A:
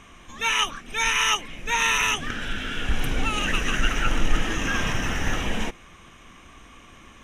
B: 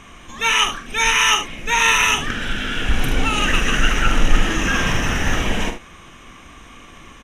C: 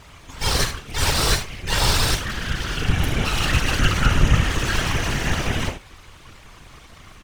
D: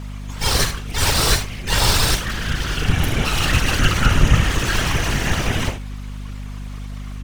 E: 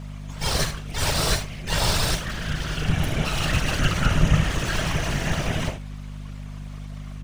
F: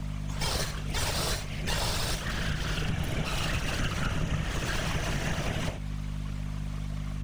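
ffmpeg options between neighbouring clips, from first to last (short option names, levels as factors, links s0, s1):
-af "aecho=1:1:44|75:0.355|0.282,volume=1.88"
-af "aeval=exprs='abs(val(0))':c=same,afftfilt=real='hypot(re,im)*cos(2*PI*random(0))':imag='hypot(re,im)*sin(2*PI*random(1))':win_size=512:overlap=0.75,volume=1.68"
-af "highshelf=f=9800:g=4.5,aeval=exprs='val(0)+0.0282*(sin(2*PI*50*n/s)+sin(2*PI*2*50*n/s)/2+sin(2*PI*3*50*n/s)/3+sin(2*PI*4*50*n/s)/4+sin(2*PI*5*50*n/s)/5)':c=same,volume=1.26"
-af "equalizer=f=160:t=o:w=0.33:g=8,equalizer=f=630:t=o:w=0.33:g=7,equalizer=f=16000:t=o:w=0.33:g=-10,volume=0.501"
-filter_complex "[0:a]acrossover=split=120|700|4800[s0][s1][s2][s3];[s0]asoftclip=type=hard:threshold=0.133[s4];[s4][s1][s2][s3]amix=inputs=4:normalize=0,acompressor=threshold=0.0398:ratio=6,volume=1.19"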